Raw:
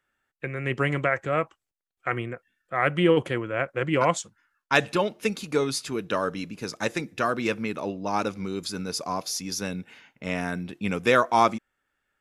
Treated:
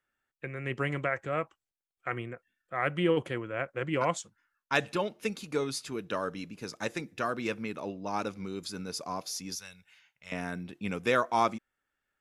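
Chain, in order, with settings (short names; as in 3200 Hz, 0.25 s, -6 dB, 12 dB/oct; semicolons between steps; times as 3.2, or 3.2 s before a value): 9.55–10.32 passive tone stack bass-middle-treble 10-0-10; gain -6.5 dB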